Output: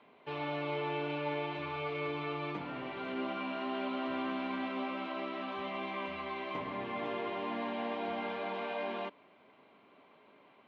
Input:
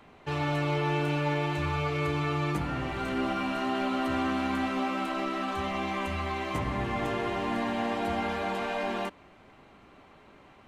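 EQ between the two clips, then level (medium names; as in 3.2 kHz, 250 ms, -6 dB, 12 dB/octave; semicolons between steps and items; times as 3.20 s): cabinet simulation 340–3200 Hz, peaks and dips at 340 Hz -6 dB, 520 Hz -4 dB, 790 Hz -8 dB, 1.3 kHz -9 dB, 1.8 kHz -9 dB, 2.7 kHz -5 dB; 0.0 dB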